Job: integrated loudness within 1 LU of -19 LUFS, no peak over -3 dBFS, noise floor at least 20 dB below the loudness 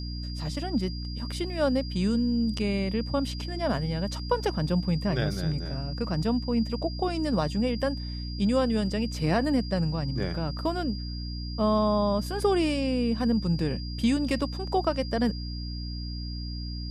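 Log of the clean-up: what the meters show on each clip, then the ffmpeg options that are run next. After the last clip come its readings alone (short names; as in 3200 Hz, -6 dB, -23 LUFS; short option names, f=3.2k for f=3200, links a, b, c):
hum 60 Hz; harmonics up to 300 Hz; hum level -32 dBFS; steady tone 4800 Hz; tone level -41 dBFS; loudness -28.0 LUFS; peak -12.0 dBFS; loudness target -19.0 LUFS
-> -af "bandreject=f=60:t=h:w=4,bandreject=f=120:t=h:w=4,bandreject=f=180:t=h:w=4,bandreject=f=240:t=h:w=4,bandreject=f=300:t=h:w=4"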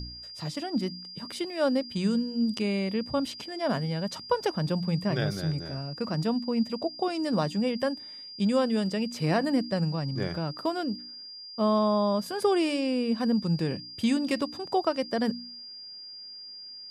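hum none; steady tone 4800 Hz; tone level -41 dBFS
-> -af "bandreject=f=4.8k:w=30"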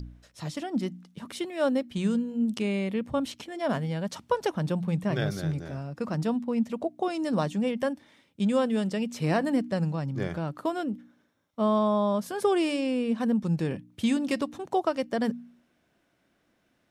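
steady tone none; loudness -29.0 LUFS; peak -12.0 dBFS; loudness target -19.0 LUFS
-> -af "volume=10dB,alimiter=limit=-3dB:level=0:latency=1"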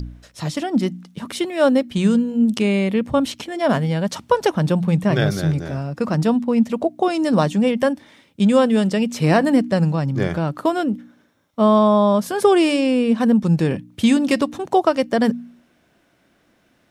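loudness -19.0 LUFS; peak -3.0 dBFS; noise floor -61 dBFS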